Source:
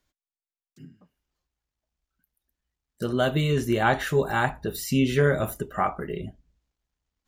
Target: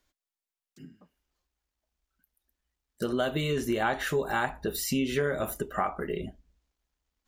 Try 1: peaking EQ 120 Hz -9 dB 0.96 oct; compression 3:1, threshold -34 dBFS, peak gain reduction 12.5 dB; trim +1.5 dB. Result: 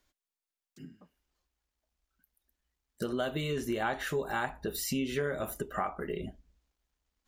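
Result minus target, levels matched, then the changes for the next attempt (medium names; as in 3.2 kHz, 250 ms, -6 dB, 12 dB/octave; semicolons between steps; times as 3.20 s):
compression: peak gain reduction +4.5 dB
change: compression 3:1, threshold -27.5 dBFS, peak gain reduction 8.5 dB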